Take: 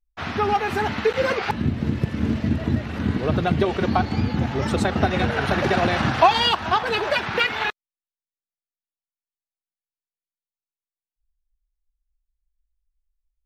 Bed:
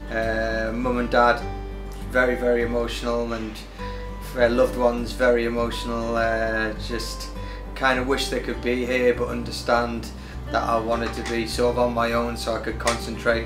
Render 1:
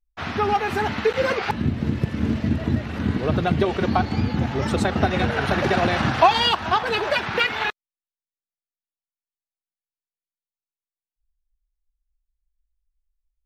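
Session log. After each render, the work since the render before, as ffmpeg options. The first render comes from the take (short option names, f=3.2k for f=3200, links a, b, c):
-af anull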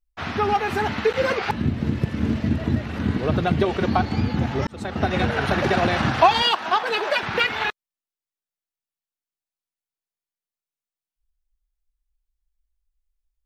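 -filter_complex "[0:a]asettb=1/sr,asplit=3[a][b][c];[a]atrim=end=6.424[d];[b]atrim=start=6.42:end=7.23,asetpts=PTS-STARTPTS,afade=t=in:d=0.004:c=qsin,afade=t=out:st=0.806:d=0.004:c=qsin,highpass=320[e];[c]atrim=start=7.226[f];[d][e]acrossfade=d=0.004:c1=hsin:c2=qsin[g];[g][f]acrossfade=d=0.004:c1=qsin:c2=hsin,asplit=2[h][i];[h]atrim=end=4.67,asetpts=PTS-STARTPTS,afade=t=out:st=4.666:d=0.004:c=hsin[j];[i]atrim=start=4.67,asetpts=PTS-STARTPTS,afade=t=in:d=0.48[k];[j][k]concat=n=2:v=0:a=1"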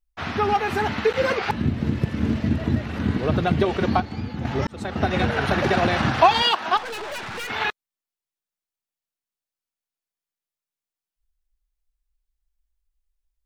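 -filter_complex "[0:a]asettb=1/sr,asplit=3[a][b][c];[a]atrim=end=6.774[d];[b]atrim=start=6.77:end=7.5,asetpts=PTS-STARTPTS,afade=t=in:d=0.004:c=qsin,afade=t=out:st=0.726:d=0.004:c=qsin,aeval=exprs='(tanh(31.6*val(0)+0.3)-tanh(0.3))/31.6':c=same[e];[c]atrim=start=7.496[f];[d][e]acrossfade=d=0.004:c1=hsin:c2=qsin[g];[g][f]acrossfade=d=0.004:c1=qsin:c2=hsin,asplit=3[h][i][j];[h]atrim=end=4.002[k];[i]atrim=start=3.998:end=4.452,asetpts=PTS-STARTPTS,volume=-7.5dB[l];[j]atrim=start=4.448[m];[k][l]acrossfade=d=0.004:c1=hsin:c2=hsin[n];[n][m]acrossfade=d=0.004:c1=hsin:c2=hsin"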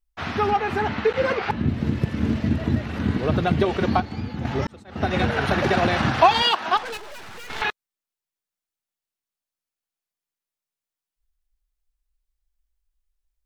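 -filter_complex "[0:a]asettb=1/sr,asplit=3[a][b][c];[a]atrim=end=0.504[d];[b]atrim=start=0.5:end=1.69,asetpts=PTS-STARTPTS,afade=t=in:d=0.004:c=qsin,afade=t=out:st=1.186:d=0.004:c=qsin,lowpass=f=3.1k:p=1[e];[c]atrim=start=1.686[f];[d][e]acrossfade=d=0.004:c1=hsin:c2=qsin[g];[g][f]acrossfade=d=0.004:c1=qsin:c2=hsin,asettb=1/sr,asplit=3[h][i][j];[h]atrim=end=6.974[k];[i]atrim=start=6.97:end=7.62,asetpts=PTS-STARTPTS,afade=t=in:d=0.004:c=qsin,afade=t=out:st=0.646:d=0.004:c=qsin,aeval=exprs='max(val(0),0)':c=same[l];[j]atrim=start=7.616[m];[k][l]acrossfade=d=0.004:c1=hsin:c2=qsin[n];[n][m]acrossfade=d=0.004:c1=qsin:c2=hsin,asplit=3[o][p][q];[o]atrim=end=4.84,asetpts=PTS-STARTPTS,afade=t=out:st=4.53:d=0.31:c=qsin:silence=0.0668344[r];[p]atrim=start=4.84:end=4.85,asetpts=PTS-STARTPTS,volume=-23.5dB[s];[q]atrim=start=4.85,asetpts=PTS-STARTPTS,afade=t=in:d=0.31:c=qsin:silence=0.0668344[t];[r][s][t]concat=n=3:v=0:a=1"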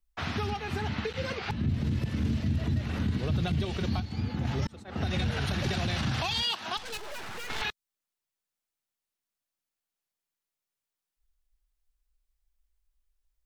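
-filter_complex "[0:a]acrossover=split=180|3000[a][b][c];[b]acompressor=threshold=-35dB:ratio=6[d];[a][d][c]amix=inputs=3:normalize=0,alimiter=limit=-20.5dB:level=0:latency=1:release=20"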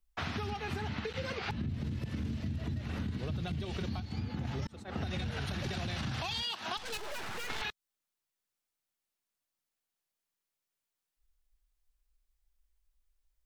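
-af "acompressor=threshold=-33dB:ratio=6"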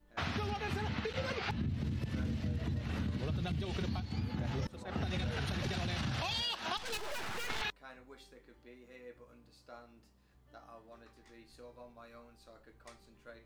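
-filter_complex "[1:a]volume=-32.5dB[a];[0:a][a]amix=inputs=2:normalize=0"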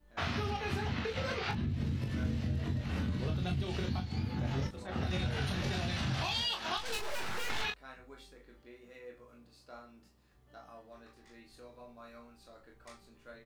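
-af "aecho=1:1:22|38:0.562|0.447"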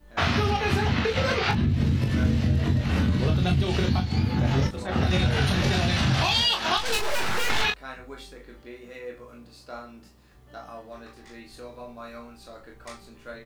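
-af "volume=11.5dB"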